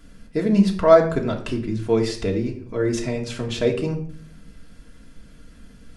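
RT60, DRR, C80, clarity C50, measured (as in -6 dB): 0.55 s, -0.5 dB, 13.0 dB, 10.0 dB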